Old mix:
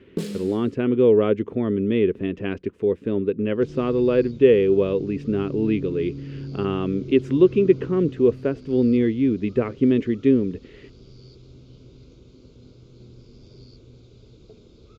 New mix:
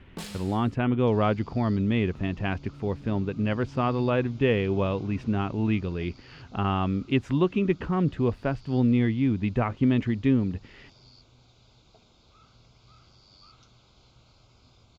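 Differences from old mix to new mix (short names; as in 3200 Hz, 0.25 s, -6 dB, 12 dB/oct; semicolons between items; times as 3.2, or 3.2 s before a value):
speech: remove HPF 610 Hz 6 dB/oct; second sound: entry -2.55 s; master: add resonant low shelf 580 Hz -10 dB, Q 3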